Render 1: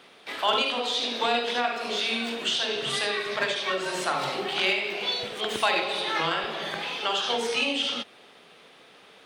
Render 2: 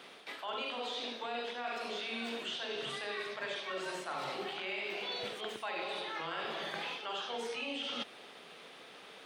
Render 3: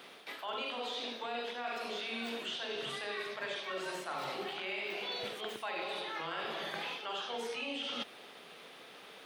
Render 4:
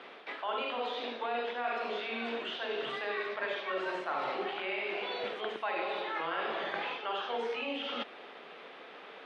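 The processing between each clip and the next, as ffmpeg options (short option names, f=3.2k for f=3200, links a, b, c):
-filter_complex "[0:a]acrossover=split=2900[a][b];[b]acompressor=threshold=-37dB:ratio=4:attack=1:release=60[c];[a][c]amix=inputs=2:normalize=0,highpass=f=140:p=1,areverse,acompressor=threshold=-36dB:ratio=10,areverse"
-af "aexciter=amount=1:drive=9.6:freq=11k"
-af "highpass=260,lowpass=2.4k,volume=5.5dB"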